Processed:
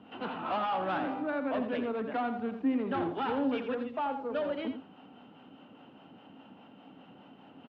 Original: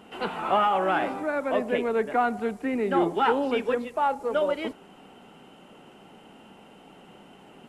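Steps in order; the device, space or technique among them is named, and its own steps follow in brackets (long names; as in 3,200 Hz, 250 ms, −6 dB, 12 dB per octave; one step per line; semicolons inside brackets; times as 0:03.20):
guitar amplifier with harmonic tremolo (two-band tremolo in antiphase 4.9 Hz, depth 50%, crossover 430 Hz; soft clipping −24.5 dBFS, distortion −12 dB; loudspeaker in its box 100–3,700 Hz, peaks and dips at 100 Hz +8 dB, 270 Hz +8 dB, 390 Hz −6 dB, 2,100 Hz −6 dB)
single-tap delay 85 ms −9 dB
level −2.5 dB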